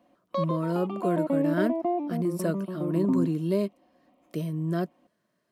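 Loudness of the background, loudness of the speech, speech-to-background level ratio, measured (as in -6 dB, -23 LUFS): -30.5 LUFS, -30.0 LUFS, 0.5 dB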